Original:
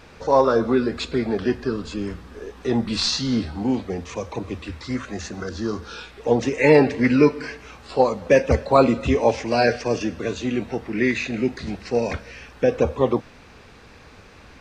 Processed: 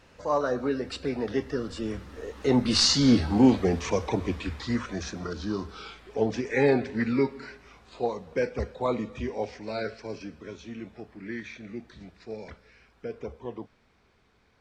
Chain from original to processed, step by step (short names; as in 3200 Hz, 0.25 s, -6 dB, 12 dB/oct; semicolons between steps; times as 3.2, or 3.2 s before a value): Doppler pass-by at 3.52, 28 m/s, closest 21 m; gain +4 dB